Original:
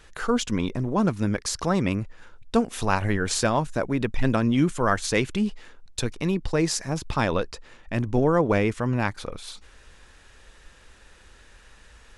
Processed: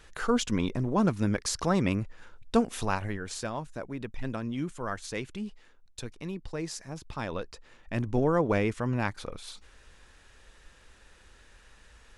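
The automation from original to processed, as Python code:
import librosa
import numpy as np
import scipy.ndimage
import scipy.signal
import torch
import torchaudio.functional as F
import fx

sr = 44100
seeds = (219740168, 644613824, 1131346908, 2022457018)

y = fx.gain(x, sr, db=fx.line((2.72, -2.5), (3.23, -12.0), (7.14, -12.0), (7.97, -4.5)))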